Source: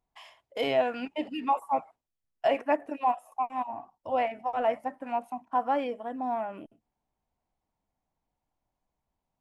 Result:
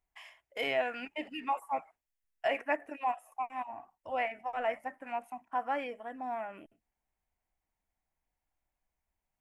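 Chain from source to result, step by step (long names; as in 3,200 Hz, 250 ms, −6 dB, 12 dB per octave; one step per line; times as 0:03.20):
graphic EQ with 10 bands 125 Hz −9 dB, 250 Hz −7 dB, 500 Hz −5 dB, 1,000 Hz −6 dB, 2,000 Hz +6 dB, 4,000 Hz −8 dB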